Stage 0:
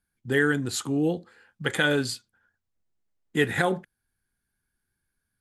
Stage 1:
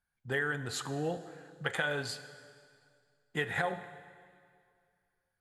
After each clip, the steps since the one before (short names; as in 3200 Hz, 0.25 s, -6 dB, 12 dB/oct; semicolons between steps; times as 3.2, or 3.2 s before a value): EQ curve 160 Hz 0 dB, 290 Hz -8 dB, 680 Hz +8 dB, 11000 Hz -4 dB; compressor, threshold -22 dBFS, peak gain reduction 8 dB; plate-style reverb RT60 2.2 s, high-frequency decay 0.9×, DRR 11.5 dB; gain -6.5 dB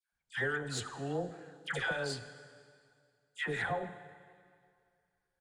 downsampling 22050 Hz; added harmonics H 6 -28 dB, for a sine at -14.5 dBFS; dispersion lows, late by 0.126 s, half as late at 1100 Hz; gain -1.5 dB